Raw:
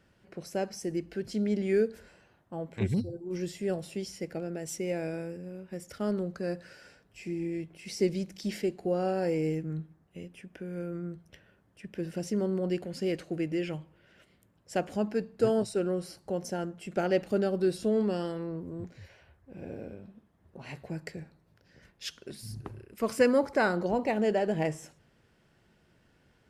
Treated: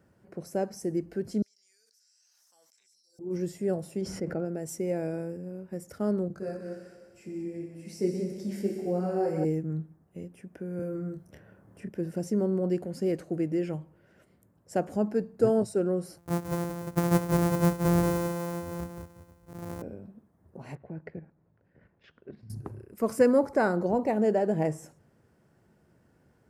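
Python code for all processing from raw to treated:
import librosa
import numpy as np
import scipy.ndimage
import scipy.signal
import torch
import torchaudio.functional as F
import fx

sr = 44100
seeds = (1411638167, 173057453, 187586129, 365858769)

y = fx.chain(x, sr, fx.bandpass_q(hz=5500.0, q=6.1),
    fx.differentiator(),
    fx.env_flatten(amount_pct=100), at=(1.42, 3.19))
y = fx.chain(y, sr, fx.lowpass(hz=2000.0, slope=6),
    fx.peak_eq(hz=1400.0, db=6.5, octaves=0.29),
    fx.env_flatten(amount_pct=70), at=(4.01, 4.45))
y = fx.chain(y, sr, fx.echo_heads(ms=61, heads='all three', feedback_pct=57, wet_db=-11.0),
    fx.detune_double(cents=11), at=(6.28, 9.45))
y = fx.chain(y, sr, fx.doubler(ms=27.0, db=-4.0),
    fx.band_squash(depth_pct=40), at=(10.79, 11.89))
y = fx.chain(y, sr, fx.sample_sort(block=256),
    fx.peak_eq(hz=66.0, db=5.0, octaves=1.6),
    fx.echo_single(ms=178, db=-6.5), at=(16.18, 19.82))
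y = fx.chain(y, sr, fx.lowpass(hz=2900.0, slope=24),
    fx.level_steps(step_db=10), at=(20.75, 22.5))
y = scipy.signal.sosfilt(scipy.signal.butter(2, 66.0, 'highpass', fs=sr, output='sos'), y)
y = fx.peak_eq(y, sr, hz=3200.0, db=-14.0, octaves=1.7)
y = y * librosa.db_to_amplitude(3.0)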